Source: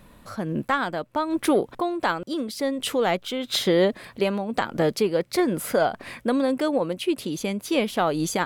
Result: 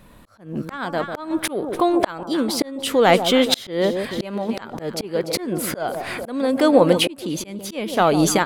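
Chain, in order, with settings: echo with dull and thin repeats by turns 0.147 s, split 1000 Hz, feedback 62%, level -11.5 dB; auto swell 0.791 s; AGC gain up to 13 dB; gain +1.5 dB

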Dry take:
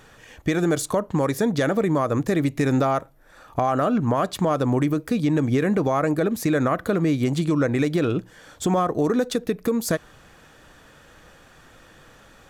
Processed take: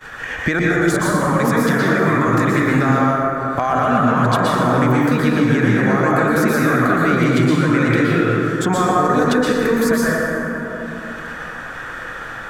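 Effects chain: expander -40 dBFS; bell 1600 Hz +12.5 dB 1.4 oct; limiter -15 dBFS, peak gain reduction 11 dB; 0.59–2.68 bands offset in time lows, highs 0.11 s, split 590 Hz; plate-style reverb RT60 2 s, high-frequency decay 0.45×, pre-delay 0.105 s, DRR -5 dB; three-band squash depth 70%; gain +1.5 dB

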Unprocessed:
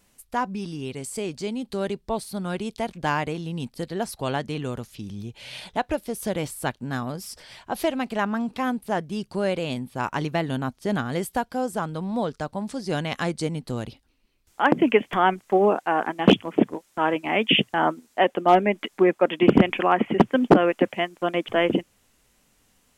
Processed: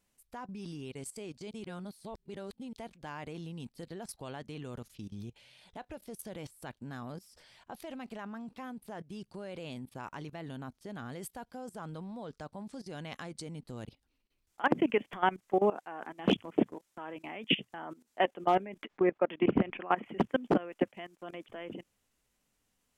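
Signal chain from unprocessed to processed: 18.84–19.92 LPF 2600 Hz 12 dB/oct; level quantiser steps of 18 dB; 1.51–2.73 reverse; gain -6 dB

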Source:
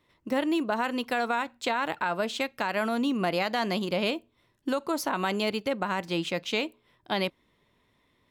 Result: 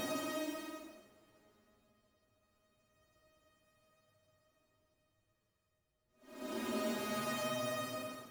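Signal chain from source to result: sample sorter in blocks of 64 samples; Doppler pass-by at 3.39, 37 m/s, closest 6.8 m; compressor 2:1, threshold -43 dBFS, peak gain reduction 10 dB; Paulstretch 11×, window 0.10 s, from 3.76; gain +5.5 dB

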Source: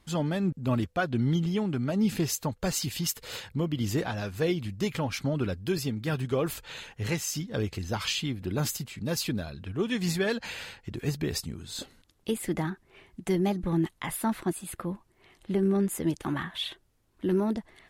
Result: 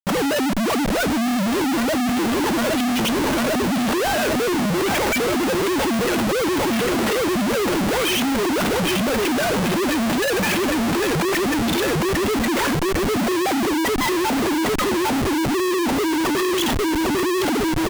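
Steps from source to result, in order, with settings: sine-wave speech; feedback echo 0.801 s, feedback 56%, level -8.5 dB; in parallel at -5 dB: soft clip -23.5 dBFS, distortion -11 dB; on the sum: sample leveller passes 3; Schmitt trigger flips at -36 dBFS

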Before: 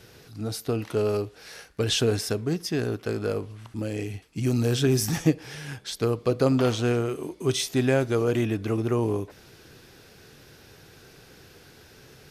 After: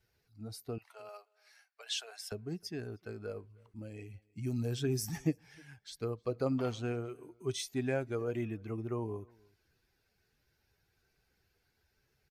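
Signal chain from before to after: per-bin expansion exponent 1.5; 0.78–2.32 Chebyshev high-pass 650 Hz, order 4; outdoor echo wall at 53 m, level -27 dB; gain -9 dB

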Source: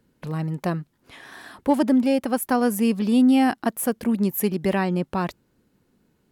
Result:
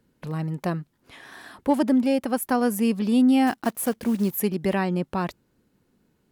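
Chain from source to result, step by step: 3.47–4.37 block floating point 5-bit; gain -1.5 dB

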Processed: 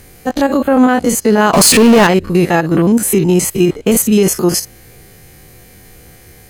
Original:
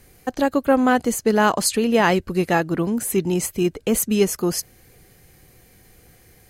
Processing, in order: stepped spectrum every 50 ms; 1.53–2.07 power-law curve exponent 0.5; maximiser +13.5 dB; gain -1 dB

